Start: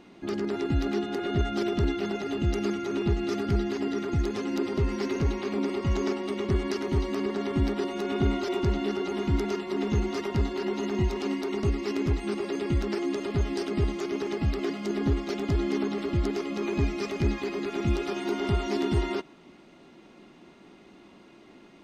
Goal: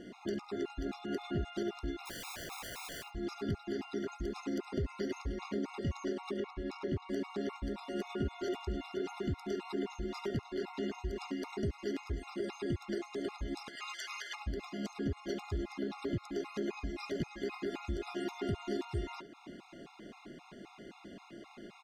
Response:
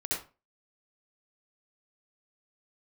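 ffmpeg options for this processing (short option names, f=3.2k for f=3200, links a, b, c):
-filter_complex "[0:a]asettb=1/sr,asplit=3[a][b][c];[a]atrim=end=13.684[d];[b]atrim=start=13.68:end=14.35,asetpts=PTS-STARTPTS,afade=t=in:d=0.004:c=qsin,afade=t=out:st=0.666:d=0.004:c=qsin,highpass=f=1.1k:w=0.5412,highpass=f=1.1k:w=1.3066[e];[c]atrim=start=14.346[f];[d][e]acrossfade=d=0.004:c1=hsin:c2=qsin[g];[g][f]acrossfade=d=0.004:c1=qsin:c2=hsin,acompressor=threshold=-37dB:ratio=5,asplit=3[h][i][j];[h]afade=t=out:st=2.05:d=0.02[k];[i]aeval=exprs='(mod(112*val(0)+1,2)-1)/112':c=same,afade=t=in:st=2.05:d=0.02,afade=t=out:st=3.02:d=0.02[l];[j]afade=t=in:st=3.02:d=0.02[m];[k][l][m]amix=inputs=3:normalize=0,asettb=1/sr,asplit=3[n][o][p];[n]atrim=end=6.314[q];[o]atrim=start=6.31:end=7.09,asetpts=PTS-STARTPTS,afade=t=in:d=0.004:c=qsin,afade=t=out:st=0.776:d=0.004:c=qsin,adynamicsmooth=sensitivity=4:basefreq=4.9k[r];[p]atrim=start=7.086[s];[q][r]acrossfade=d=0.004:c1=hsin:c2=qsin[t];[t][s]acrossfade=d=0.004:c1=qsin:c2=hsin,aecho=1:1:71:0.168,afftfilt=real='re*gt(sin(2*PI*3.8*pts/sr)*(1-2*mod(floor(b*sr/1024/700),2)),0)':imag='im*gt(sin(2*PI*3.8*pts/sr)*(1-2*mod(floor(b*sr/1024/700),2)),0)':win_size=1024:overlap=0.75,volume=4dB"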